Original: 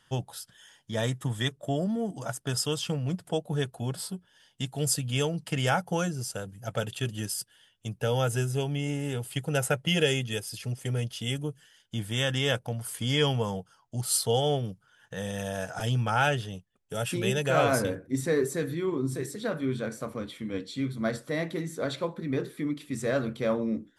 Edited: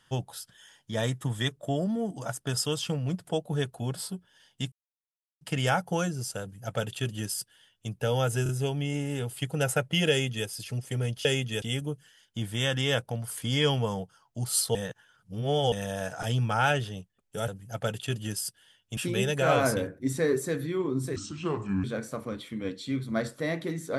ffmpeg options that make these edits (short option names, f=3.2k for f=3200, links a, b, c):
-filter_complex "[0:a]asplit=13[a][b][c][d][e][f][g][h][i][j][k][l][m];[a]atrim=end=4.72,asetpts=PTS-STARTPTS,afade=t=out:st=4.716:d=0.004:c=hsin[n];[b]atrim=start=4.72:end=5.41,asetpts=PTS-STARTPTS,volume=0[o];[c]atrim=start=5.41:end=8.462,asetpts=PTS-STARTPTS,afade=t=in:d=0.004:c=hsin[p];[d]atrim=start=8.428:end=8.462[q];[e]atrim=start=8.428:end=11.192[r];[f]atrim=start=10.038:end=10.412[s];[g]atrim=start=11.188:end=14.322[t];[h]atrim=start=14.318:end=15.292,asetpts=PTS-STARTPTS,areverse[u];[i]atrim=start=15.288:end=17.052[v];[j]atrim=start=6.408:end=7.902[w];[k]atrim=start=17.048:end=19.244[x];[l]atrim=start=19.24:end=19.73,asetpts=PTS-STARTPTS,asetrate=31752,aresample=44100,atrim=end_sample=30012,asetpts=PTS-STARTPTS[y];[m]atrim=start=19.726[z];[n][o][p]concat=n=3:v=0:a=1[aa];[aa][q]acrossfade=d=0.004:c1=hsin:c2=hsin[ab];[ab][r]acrossfade=d=0.004:c1=hsin:c2=hsin[ac];[ac][s]acrossfade=d=0.004:c1=hsin:c2=hsin[ad];[ad][t]acrossfade=d=0.004:c1=hsin:c2=hsin[ae];[ae][u]acrossfade=d=0.004:c1=hsin:c2=hsin[af];[af][v]acrossfade=d=0.004:c1=hsin:c2=hsin[ag];[ag][w]acrossfade=d=0.004:c1=hsin:c2=hsin[ah];[ah][x]acrossfade=d=0.004:c1=hsin:c2=hsin[ai];[ai][y]acrossfade=d=0.004:c1=hsin:c2=hsin[aj];[aj][z]acrossfade=d=0.004:c1=hsin:c2=hsin"